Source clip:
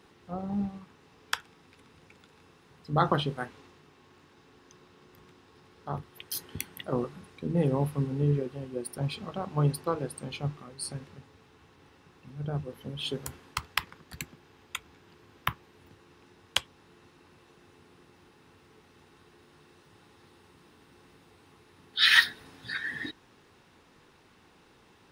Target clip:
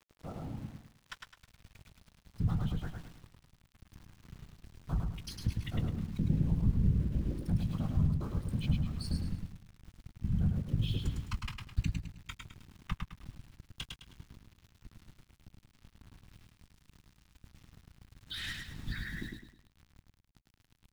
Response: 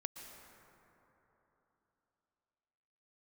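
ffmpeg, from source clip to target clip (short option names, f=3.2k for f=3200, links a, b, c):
-filter_complex "[0:a]afftfilt=real='hypot(re,im)*cos(2*PI*random(0))':imag='hypot(re,im)*sin(2*PI*random(1))':win_size=512:overlap=0.75,lowpass=5.2k,equalizer=f=1.1k:w=0.67:g=-3,asplit=2[a][b];[b]adelay=19,volume=-10dB[c];[a][c]amix=inputs=2:normalize=0,acrossover=split=610[d][e];[e]asoftclip=type=tanh:threshold=-30dB[f];[d][f]amix=inputs=2:normalize=0,acompressor=threshold=-46dB:ratio=8,aeval=exprs='val(0)*gte(abs(val(0)),0.00133)':c=same,asubboost=boost=12:cutoff=140,acontrast=32,atempo=1.2,aecho=1:1:105|210|315|420:0.631|0.221|0.0773|0.0271"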